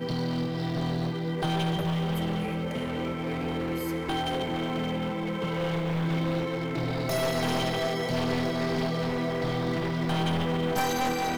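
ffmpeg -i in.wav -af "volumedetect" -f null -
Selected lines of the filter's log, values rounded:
mean_volume: -28.5 dB
max_volume: -14.3 dB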